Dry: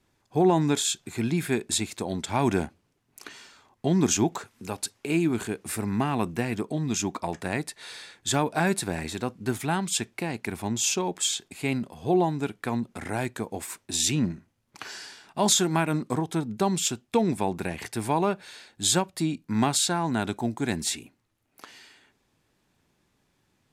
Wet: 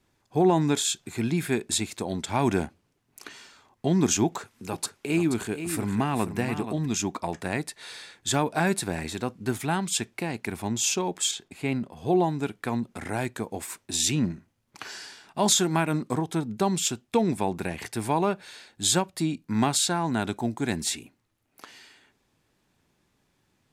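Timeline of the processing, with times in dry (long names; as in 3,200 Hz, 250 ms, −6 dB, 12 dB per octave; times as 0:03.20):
0:04.25–0:06.86: single-tap delay 479 ms −9.5 dB
0:11.31–0:11.97: high-shelf EQ 3,700 Hz −8 dB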